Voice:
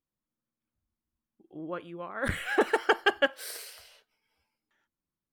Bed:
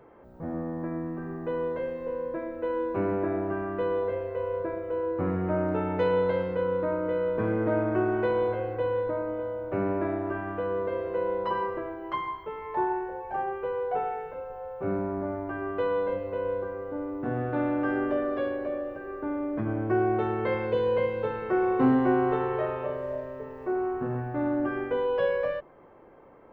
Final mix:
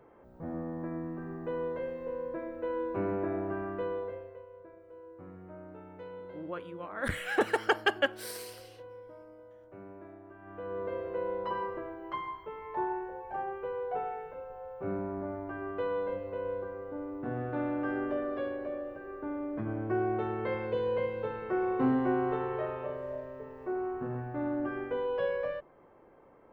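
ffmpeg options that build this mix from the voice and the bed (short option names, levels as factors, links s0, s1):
-filter_complex "[0:a]adelay=4800,volume=0.75[s0];[1:a]volume=3.35,afade=t=out:st=3.68:d=0.78:silence=0.158489,afade=t=in:st=10.38:d=0.51:silence=0.177828[s1];[s0][s1]amix=inputs=2:normalize=0"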